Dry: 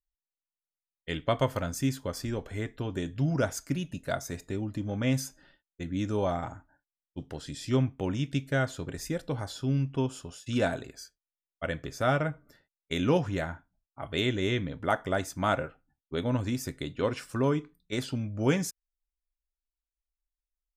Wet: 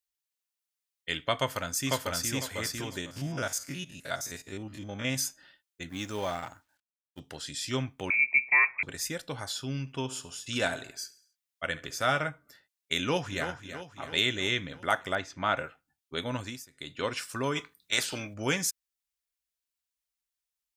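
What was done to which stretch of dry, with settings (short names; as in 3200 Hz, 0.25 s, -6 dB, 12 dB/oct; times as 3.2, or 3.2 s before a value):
1.36–2.34 echo throw 0.5 s, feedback 25%, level -1 dB
3.01–5.16 stepped spectrum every 50 ms
5.89–7.2 G.711 law mismatch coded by A
8.1–8.83 inverted band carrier 2500 Hz
9.8–12.29 feedback echo 69 ms, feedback 49%, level -18 dB
12.97–13.48 echo throw 0.33 s, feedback 60%, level -10.5 dB
15.15–15.57 air absorption 190 m
16.38–16.98 dip -21 dB, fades 0.28 s
17.55–18.33 spectral limiter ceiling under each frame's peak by 16 dB
whole clip: HPF 61 Hz; tilt shelf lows -7.5 dB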